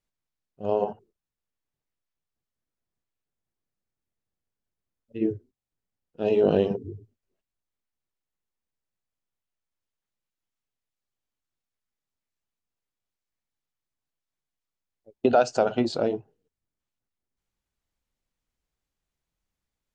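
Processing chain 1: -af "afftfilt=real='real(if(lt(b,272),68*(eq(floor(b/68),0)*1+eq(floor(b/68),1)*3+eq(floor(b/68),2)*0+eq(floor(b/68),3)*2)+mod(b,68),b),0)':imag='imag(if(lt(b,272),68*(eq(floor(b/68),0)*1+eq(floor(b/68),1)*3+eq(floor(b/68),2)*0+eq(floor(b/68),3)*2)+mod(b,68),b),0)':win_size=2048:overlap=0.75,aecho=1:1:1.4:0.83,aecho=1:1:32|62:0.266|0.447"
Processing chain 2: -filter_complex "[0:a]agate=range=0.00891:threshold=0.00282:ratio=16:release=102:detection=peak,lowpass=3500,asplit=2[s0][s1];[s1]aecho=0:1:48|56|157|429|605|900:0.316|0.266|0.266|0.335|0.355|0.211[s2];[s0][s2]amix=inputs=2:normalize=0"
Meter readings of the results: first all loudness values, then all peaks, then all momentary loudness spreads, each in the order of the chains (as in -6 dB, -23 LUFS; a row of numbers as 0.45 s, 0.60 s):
-19.5 LUFS, -25.5 LUFS; -2.5 dBFS, -6.0 dBFS; 18 LU, 18 LU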